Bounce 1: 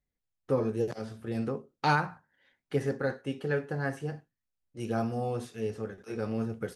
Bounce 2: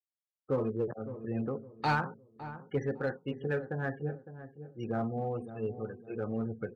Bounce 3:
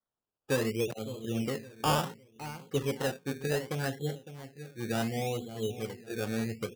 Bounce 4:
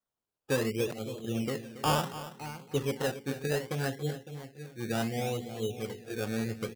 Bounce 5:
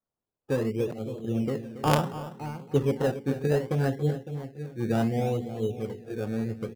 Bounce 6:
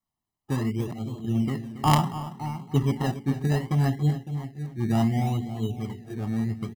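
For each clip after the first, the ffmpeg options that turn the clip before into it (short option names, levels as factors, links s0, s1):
-filter_complex "[0:a]afftfilt=real='re*gte(hypot(re,im),0.0112)':imag='im*gte(hypot(re,im),0.0112)':win_size=1024:overlap=0.75,asplit=2[s0][s1];[s1]asoftclip=type=hard:threshold=0.0562,volume=0.562[s2];[s0][s2]amix=inputs=2:normalize=0,asplit=2[s3][s4];[s4]adelay=558,lowpass=f=880:p=1,volume=0.266,asplit=2[s5][s6];[s6]adelay=558,lowpass=f=880:p=1,volume=0.35,asplit=2[s7][s8];[s8]adelay=558,lowpass=f=880:p=1,volume=0.35,asplit=2[s9][s10];[s10]adelay=558,lowpass=f=880:p=1,volume=0.35[s11];[s3][s5][s7][s9][s11]amix=inputs=5:normalize=0,volume=0.501"
-af "acrusher=samples=17:mix=1:aa=0.000001:lfo=1:lforange=10.2:lforate=0.68,volume=1.19"
-af "aecho=1:1:279:0.2"
-af "tiltshelf=f=1300:g=7,aeval=exprs='0.299*(cos(1*acos(clip(val(0)/0.299,-1,1)))-cos(1*PI/2))+0.106*(cos(3*acos(clip(val(0)/0.299,-1,1)))-cos(3*PI/2))+0.0376*(cos(5*acos(clip(val(0)/0.299,-1,1)))-cos(5*PI/2))+0.00473*(cos(7*acos(clip(val(0)/0.299,-1,1)))-cos(7*PI/2))':c=same,dynaudnorm=f=300:g=11:m=1.68,volume=1.58"
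-af "aecho=1:1:1:0.9"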